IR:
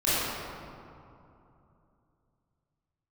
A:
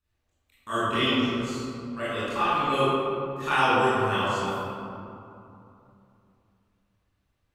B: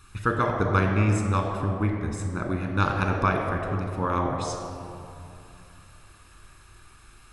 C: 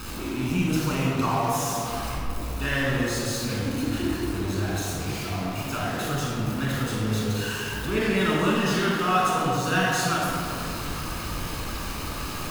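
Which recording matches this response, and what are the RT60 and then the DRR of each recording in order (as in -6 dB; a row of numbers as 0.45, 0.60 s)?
A; 2.8, 2.8, 2.8 s; -13.5, 2.0, -5.0 dB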